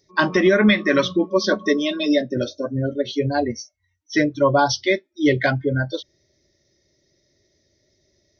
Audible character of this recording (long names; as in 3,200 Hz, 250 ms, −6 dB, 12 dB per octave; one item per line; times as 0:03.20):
background noise floor −68 dBFS
spectral slope −4.0 dB per octave